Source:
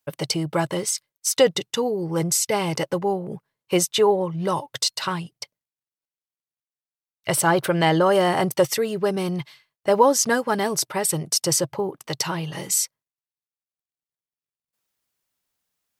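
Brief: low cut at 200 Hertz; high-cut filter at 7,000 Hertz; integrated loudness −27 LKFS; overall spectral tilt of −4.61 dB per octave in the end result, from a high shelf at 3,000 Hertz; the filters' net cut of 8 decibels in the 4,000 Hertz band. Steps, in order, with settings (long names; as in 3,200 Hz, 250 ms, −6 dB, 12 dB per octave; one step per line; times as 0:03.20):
high-pass filter 200 Hz
low-pass filter 7,000 Hz
high-shelf EQ 3,000 Hz −8 dB
parametric band 4,000 Hz −3.5 dB
level −2.5 dB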